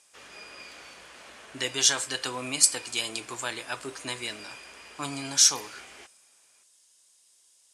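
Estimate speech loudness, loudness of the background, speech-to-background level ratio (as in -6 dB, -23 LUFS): -26.0 LUFS, -45.5 LUFS, 19.5 dB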